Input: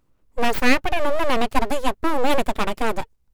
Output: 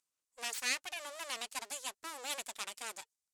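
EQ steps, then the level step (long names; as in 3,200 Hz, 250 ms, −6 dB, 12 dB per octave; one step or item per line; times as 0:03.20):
resonant band-pass 7,800 Hz, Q 1.5
0.0 dB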